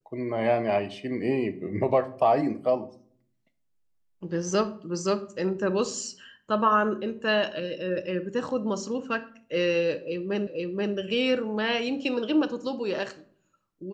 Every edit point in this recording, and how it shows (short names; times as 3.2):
10.47 repeat of the last 0.48 s